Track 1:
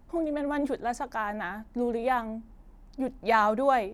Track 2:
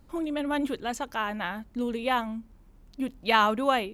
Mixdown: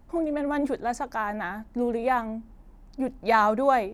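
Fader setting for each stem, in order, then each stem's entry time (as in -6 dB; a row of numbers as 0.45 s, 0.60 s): +1.5 dB, -16.0 dB; 0.00 s, 0.00 s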